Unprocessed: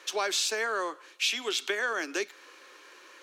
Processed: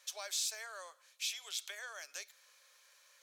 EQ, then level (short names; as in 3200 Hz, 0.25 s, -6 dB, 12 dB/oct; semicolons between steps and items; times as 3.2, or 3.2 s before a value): ladder high-pass 530 Hz, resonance 65%; differentiator; notch 2800 Hz, Q 14; +6.5 dB